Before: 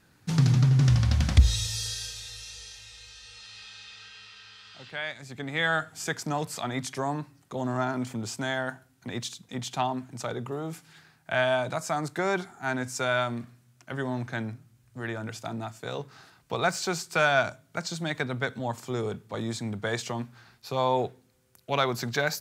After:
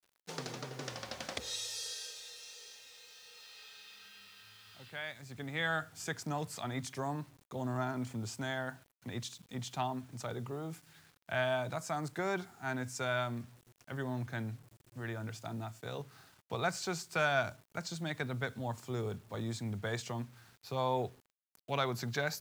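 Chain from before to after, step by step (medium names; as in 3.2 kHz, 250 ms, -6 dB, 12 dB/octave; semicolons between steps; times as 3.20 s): high-pass sweep 470 Hz -> 80 Hz, 3.58–4.76 s; bit crusher 9-bit; trim -8 dB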